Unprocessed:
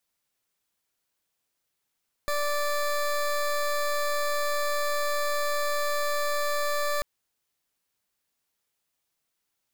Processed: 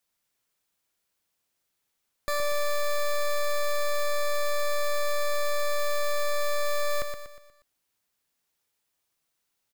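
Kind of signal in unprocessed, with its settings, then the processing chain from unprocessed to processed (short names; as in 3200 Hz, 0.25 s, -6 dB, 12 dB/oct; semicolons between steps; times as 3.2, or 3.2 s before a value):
pulse 585 Hz, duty 20% -26.5 dBFS 4.74 s
feedback echo 0.12 s, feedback 44%, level -6.5 dB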